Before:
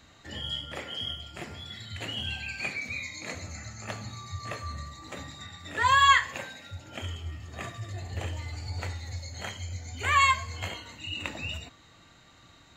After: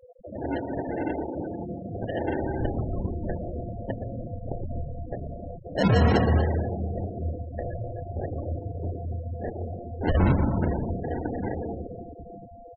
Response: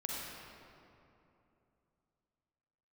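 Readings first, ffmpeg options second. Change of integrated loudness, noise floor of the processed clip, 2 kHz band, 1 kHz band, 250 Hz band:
+1.0 dB, −45 dBFS, −9.5 dB, −6.0 dB, +17.5 dB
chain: -filter_complex "[0:a]aresample=8000,aresample=44100,lowshelf=frequency=140:gain=-6.5,acontrast=81,alimiter=limit=-12dB:level=0:latency=1:release=126,acompressor=mode=upward:threshold=-37dB:ratio=2.5,aeval=exprs='val(0)+0.00891*sin(2*PI*500*n/s)':channel_layout=same,acrusher=samples=37:mix=1:aa=0.000001,asplit=2[link_01][link_02];[link_02]adelay=26,volume=-12.5dB[link_03];[link_01][link_03]amix=inputs=2:normalize=0,asplit=2[link_04][link_05];[1:a]atrim=start_sample=2205,adelay=119[link_06];[link_05][link_06]afir=irnorm=-1:irlink=0,volume=-3.5dB[link_07];[link_04][link_07]amix=inputs=2:normalize=0,afftfilt=real='re*gte(hypot(re,im),0.0631)':imag='im*gte(hypot(re,im),0.0631)':win_size=1024:overlap=0.75,volume=-1.5dB"

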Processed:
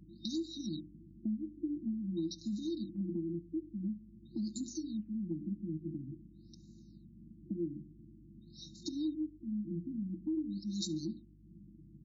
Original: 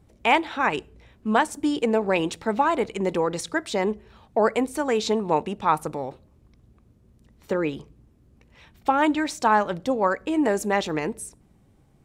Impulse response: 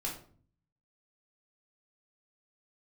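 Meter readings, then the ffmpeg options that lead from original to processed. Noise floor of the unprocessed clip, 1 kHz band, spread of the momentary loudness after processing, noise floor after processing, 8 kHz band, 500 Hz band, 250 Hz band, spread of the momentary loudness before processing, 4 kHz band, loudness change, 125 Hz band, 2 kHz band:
−59 dBFS, below −40 dB, 19 LU, −58 dBFS, −13.5 dB, −23.5 dB, −9.0 dB, 10 LU, −13.0 dB, −15.0 dB, −6.5 dB, below −40 dB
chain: -filter_complex "[0:a]afftfilt=real='re*(1-between(b*sr/4096,350,3700))':imag='im*(1-between(b*sr/4096,350,3700))':win_size=4096:overlap=0.75,highpass=170,highshelf=frequency=5300:gain=10,bandreject=frequency=60:width_type=h:width=6,bandreject=frequency=120:width_type=h:width=6,bandreject=frequency=180:width_type=h:width=6,bandreject=frequency=240:width_type=h:width=6,bandreject=frequency=300:width_type=h:width=6,bandreject=frequency=360:width_type=h:width=6,bandreject=frequency=420:width_type=h:width=6,bandreject=frequency=480:width_type=h:width=6,aecho=1:1:5.7:0.74,acompressor=threshold=-43dB:ratio=4,aeval=exprs='val(0)+0.000501*(sin(2*PI*50*n/s)+sin(2*PI*2*50*n/s)/2+sin(2*PI*3*50*n/s)/3+sin(2*PI*4*50*n/s)/4+sin(2*PI*5*50*n/s)/5)':channel_layout=same,asplit=2[link_01][link_02];[link_02]aecho=0:1:70|140|210|280:0.0794|0.0469|0.0277|0.0163[link_03];[link_01][link_03]amix=inputs=2:normalize=0,afftfilt=real='re*lt(b*sr/1024,530*pow(7400/530,0.5+0.5*sin(2*PI*0.48*pts/sr)))':imag='im*lt(b*sr/1024,530*pow(7400/530,0.5+0.5*sin(2*PI*0.48*pts/sr)))':win_size=1024:overlap=0.75,volume=5.5dB"

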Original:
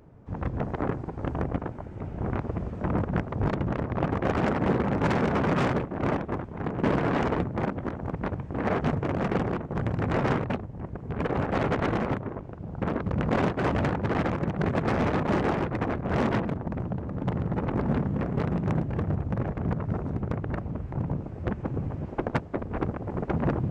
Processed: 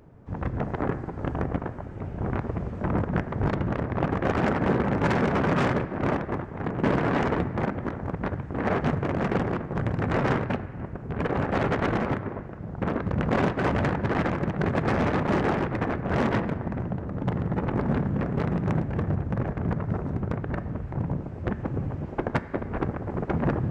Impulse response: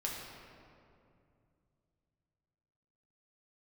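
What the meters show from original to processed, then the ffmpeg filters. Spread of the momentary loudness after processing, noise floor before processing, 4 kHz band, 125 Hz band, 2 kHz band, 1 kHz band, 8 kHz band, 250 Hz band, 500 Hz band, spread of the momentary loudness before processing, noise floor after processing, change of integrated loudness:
8 LU, −40 dBFS, +1.0 dB, +1.0 dB, +2.5 dB, +1.5 dB, can't be measured, +1.0 dB, +1.0 dB, 8 LU, −38 dBFS, +1.0 dB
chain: -filter_complex "[0:a]asplit=2[link_01][link_02];[link_02]equalizer=frequency=1700:width=1.5:gain=10[link_03];[1:a]atrim=start_sample=2205[link_04];[link_03][link_04]afir=irnorm=-1:irlink=0,volume=-16.5dB[link_05];[link_01][link_05]amix=inputs=2:normalize=0"

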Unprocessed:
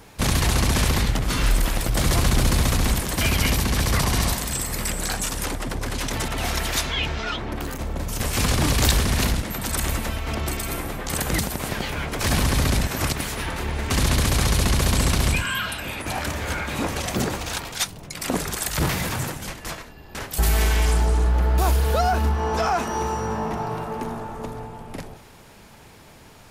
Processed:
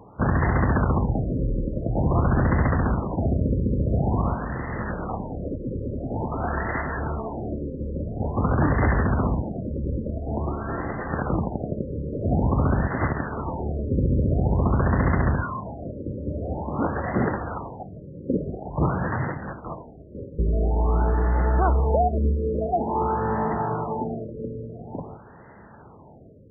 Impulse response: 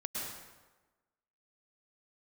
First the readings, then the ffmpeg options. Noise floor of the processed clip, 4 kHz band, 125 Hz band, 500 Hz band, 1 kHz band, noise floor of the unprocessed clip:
−47 dBFS, below −40 dB, 0.0 dB, +1.5 dB, −0.5 dB, −47 dBFS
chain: -filter_complex "[0:a]highpass=69,asplit=2[link_01][link_02];[1:a]atrim=start_sample=2205[link_03];[link_02][link_03]afir=irnorm=-1:irlink=0,volume=-21.5dB[link_04];[link_01][link_04]amix=inputs=2:normalize=0,afftfilt=real='re*lt(b*sr/1024,560*pow(2100/560,0.5+0.5*sin(2*PI*0.48*pts/sr)))':imag='im*lt(b*sr/1024,560*pow(2100/560,0.5+0.5*sin(2*PI*0.48*pts/sr)))':win_size=1024:overlap=0.75,volume=1.5dB"

